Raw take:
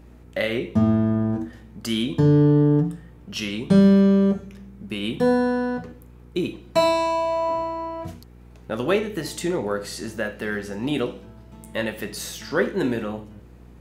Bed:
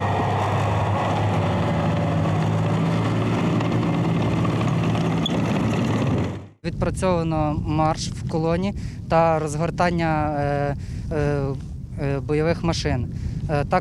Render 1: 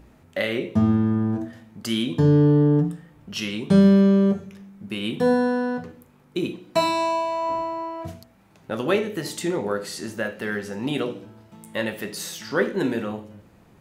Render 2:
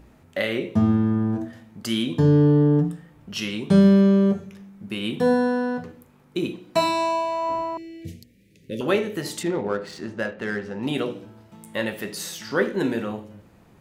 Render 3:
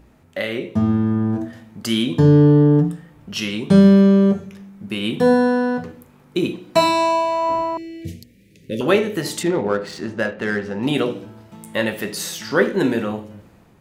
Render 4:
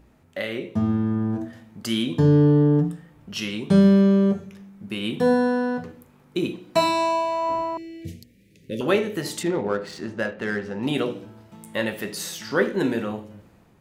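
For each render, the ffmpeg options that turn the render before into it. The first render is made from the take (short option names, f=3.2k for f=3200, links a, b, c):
-af "bandreject=f=60:t=h:w=4,bandreject=f=120:t=h:w=4,bandreject=f=180:t=h:w=4,bandreject=f=240:t=h:w=4,bandreject=f=300:t=h:w=4,bandreject=f=360:t=h:w=4,bandreject=f=420:t=h:w=4,bandreject=f=480:t=h:w=4,bandreject=f=540:t=h:w=4,bandreject=f=600:t=h:w=4,bandreject=f=660:t=h:w=4"
-filter_complex "[0:a]asettb=1/sr,asplit=3[a][b][c];[a]atrim=end=7.774[d];[b]atrim=start=7.77:end=8.81,asetpts=PTS-STARTPTS,afade=t=in:d=0.004:c=qsin,afade=t=out:st=1.036:d=0.004:c=qsin,asuperstop=centerf=1000:order=12:qfactor=0.73[e];[c]atrim=start=8.806[f];[d][e]acrossfade=d=0.004:c1=hsin:c2=qsin[g];[g][f]acrossfade=d=0.004:c1=qsin:c2=hsin,asettb=1/sr,asplit=3[h][i][j];[h]atrim=end=9.434[k];[i]atrim=start=9.43:end=10.83,asetpts=PTS-STARTPTS,afade=t=in:d=0.004:c=qsin,afade=t=out:st=1.396:d=0.004:c=qsin,adynamicsmooth=sensitivity=4.5:basefreq=2.3k[l];[j]atrim=start=10.826[m];[k][l]acrossfade=d=0.004:c1=hsin:c2=qsin[n];[n][m]acrossfade=d=0.004:c1=qsin:c2=hsin"
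-af "dynaudnorm=f=790:g=3:m=6.5dB"
-af "volume=-4.5dB"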